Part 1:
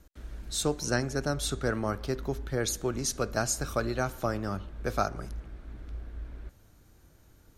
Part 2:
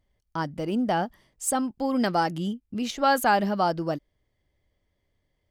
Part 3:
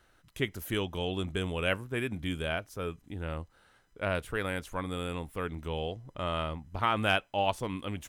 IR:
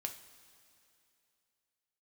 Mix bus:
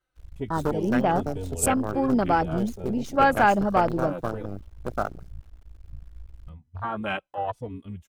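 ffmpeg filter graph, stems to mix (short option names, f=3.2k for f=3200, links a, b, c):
-filter_complex "[0:a]acrusher=bits=5:dc=4:mix=0:aa=0.000001,volume=1.5dB[a];[1:a]adynamicequalizer=threshold=0.0178:dfrequency=2400:dqfactor=0.7:tfrequency=2400:tqfactor=0.7:attack=5:release=100:ratio=0.375:range=2:mode=boostabove:tftype=highshelf,adelay=150,volume=2dB[b];[2:a]asplit=2[c][d];[d]adelay=3.4,afreqshift=-0.96[e];[c][e]amix=inputs=2:normalize=1,volume=2.5dB,asplit=3[f][g][h];[f]atrim=end=4.46,asetpts=PTS-STARTPTS,afade=t=out:st=4.456:d=0.004:c=hsin[i];[g]atrim=start=4.46:end=6.48,asetpts=PTS-STARTPTS,volume=0[j];[h]atrim=start=6.48,asetpts=PTS-STARTPTS,afade=t=in:d=0.004:c=hsin[k];[i][j][k]concat=n=3:v=0:a=1,asplit=2[l][m];[m]apad=whole_len=334015[n];[a][n]sidechaincompress=threshold=-31dB:ratio=8:attack=30:release=138[o];[o][b][l]amix=inputs=3:normalize=0,highshelf=f=12k:g=-3,bandreject=f=1.8k:w=20,afwtdn=0.0398"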